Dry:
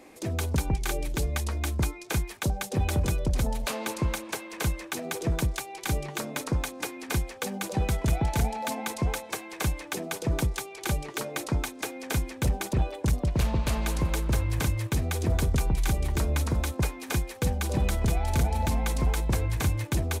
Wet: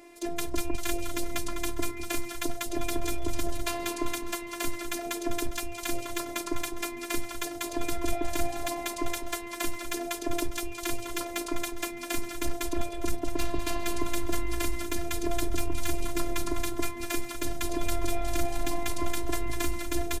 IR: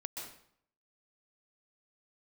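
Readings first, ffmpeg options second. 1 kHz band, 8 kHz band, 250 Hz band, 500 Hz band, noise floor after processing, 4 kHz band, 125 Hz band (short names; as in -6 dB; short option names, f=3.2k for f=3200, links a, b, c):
-1.0 dB, 0.0 dB, -0.5 dB, 0.0 dB, -39 dBFS, 0.0 dB, -14.5 dB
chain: -filter_complex "[0:a]asplit=6[a][b][c][d][e][f];[b]adelay=203,afreqshift=-110,volume=-9.5dB[g];[c]adelay=406,afreqshift=-220,volume=-15.7dB[h];[d]adelay=609,afreqshift=-330,volume=-21.9dB[i];[e]adelay=812,afreqshift=-440,volume=-28.1dB[j];[f]adelay=1015,afreqshift=-550,volume=-34.3dB[k];[a][g][h][i][j][k]amix=inputs=6:normalize=0,aeval=exprs='0.141*(cos(1*acos(clip(val(0)/0.141,-1,1)))-cos(1*PI/2))+0.00794*(cos(2*acos(clip(val(0)/0.141,-1,1)))-cos(2*PI/2))':c=same,afftfilt=real='hypot(re,im)*cos(PI*b)':imag='0':win_size=512:overlap=0.75,volume=3dB"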